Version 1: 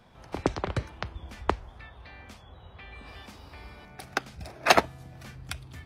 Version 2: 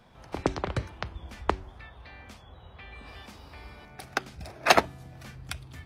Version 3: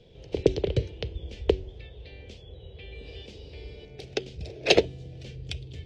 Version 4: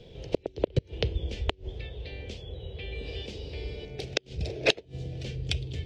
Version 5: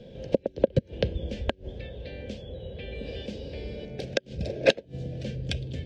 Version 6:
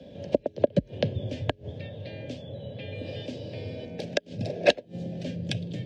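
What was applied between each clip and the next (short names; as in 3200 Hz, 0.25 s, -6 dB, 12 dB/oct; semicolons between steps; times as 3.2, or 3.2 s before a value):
de-hum 94.18 Hz, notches 4
EQ curve 140 Hz 0 dB, 240 Hz -8 dB, 450 Hz +8 dB, 700 Hz -12 dB, 1200 Hz -27 dB, 3000 Hz +1 dB, 7400 Hz -9 dB, 11000 Hz -27 dB; gain +5 dB
flipped gate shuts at -14 dBFS, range -30 dB; gain +5.5 dB
small resonant body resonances 220/540/1600 Hz, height 13 dB, ringing for 30 ms; gain -3 dB
frequency shift +42 Hz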